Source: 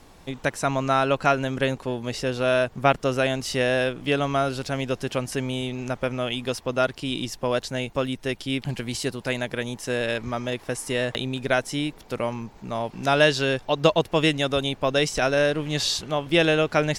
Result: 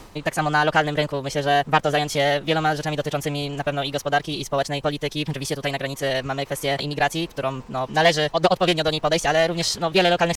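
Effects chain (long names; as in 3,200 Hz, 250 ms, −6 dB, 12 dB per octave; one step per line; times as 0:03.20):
dynamic equaliser 240 Hz, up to −5 dB, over −39 dBFS, Q 2.2
reversed playback
upward compression, threshold −30 dBFS
reversed playback
pitch shifter +2 semitones
in parallel at −5 dB: soft clipping −14.5 dBFS, distortion −15 dB
on the sum: phase-vocoder stretch with locked phases 0.61×
highs frequency-modulated by the lows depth 0.25 ms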